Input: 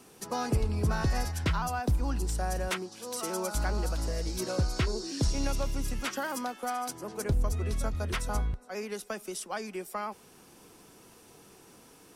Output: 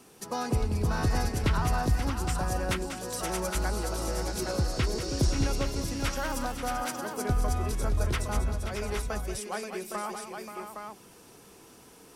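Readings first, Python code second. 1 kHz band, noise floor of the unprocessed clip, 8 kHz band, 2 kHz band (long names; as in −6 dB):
+2.0 dB, −56 dBFS, +2.0 dB, +2.0 dB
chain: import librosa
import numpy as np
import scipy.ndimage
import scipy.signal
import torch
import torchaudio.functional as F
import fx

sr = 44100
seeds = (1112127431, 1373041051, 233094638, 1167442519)

y = fx.echo_multitap(x, sr, ms=(190, 531, 625, 814), db=(-10.0, -9.5, -9.0, -6.0))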